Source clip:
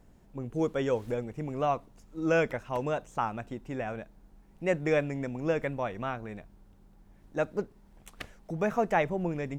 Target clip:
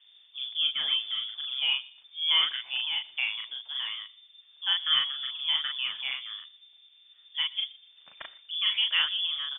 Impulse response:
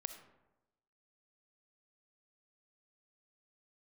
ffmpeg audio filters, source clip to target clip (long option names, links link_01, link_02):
-filter_complex "[0:a]asplit=2[link_01][link_02];[link_02]adelay=38,volume=-2.5dB[link_03];[link_01][link_03]amix=inputs=2:normalize=0,asplit=2[link_04][link_05];[link_05]adelay=120,lowpass=frequency=1900:poles=1,volume=-21.5dB,asplit=2[link_06][link_07];[link_07]adelay=120,lowpass=frequency=1900:poles=1,volume=0.34[link_08];[link_04][link_06][link_08]amix=inputs=3:normalize=0,lowpass=frequency=3100:width_type=q:width=0.5098,lowpass=frequency=3100:width_type=q:width=0.6013,lowpass=frequency=3100:width_type=q:width=0.9,lowpass=frequency=3100:width_type=q:width=2.563,afreqshift=-3600,volume=-1.5dB"